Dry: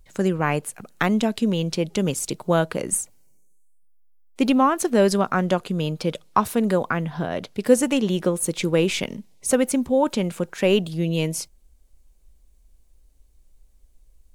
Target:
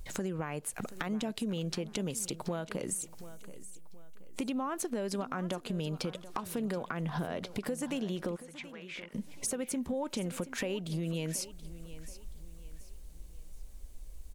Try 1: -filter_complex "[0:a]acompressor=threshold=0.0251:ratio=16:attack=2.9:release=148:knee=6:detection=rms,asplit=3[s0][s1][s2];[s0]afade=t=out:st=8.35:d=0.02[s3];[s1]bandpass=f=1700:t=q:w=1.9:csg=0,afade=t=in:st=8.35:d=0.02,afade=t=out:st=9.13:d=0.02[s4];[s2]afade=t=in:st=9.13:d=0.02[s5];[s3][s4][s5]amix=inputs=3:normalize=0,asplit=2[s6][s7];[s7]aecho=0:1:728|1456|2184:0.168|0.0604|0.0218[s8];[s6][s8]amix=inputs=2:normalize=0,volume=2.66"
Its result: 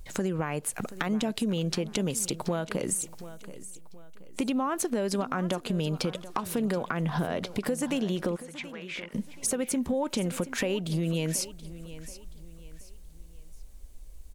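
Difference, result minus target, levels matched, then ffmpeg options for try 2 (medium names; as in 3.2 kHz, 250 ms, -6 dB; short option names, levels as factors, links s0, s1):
compression: peak gain reduction -6 dB
-filter_complex "[0:a]acompressor=threshold=0.0119:ratio=16:attack=2.9:release=148:knee=6:detection=rms,asplit=3[s0][s1][s2];[s0]afade=t=out:st=8.35:d=0.02[s3];[s1]bandpass=f=1700:t=q:w=1.9:csg=0,afade=t=in:st=8.35:d=0.02,afade=t=out:st=9.13:d=0.02[s4];[s2]afade=t=in:st=9.13:d=0.02[s5];[s3][s4][s5]amix=inputs=3:normalize=0,asplit=2[s6][s7];[s7]aecho=0:1:728|1456|2184:0.168|0.0604|0.0218[s8];[s6][s8]amix=inputs=2:normalize=0,volume=2.66"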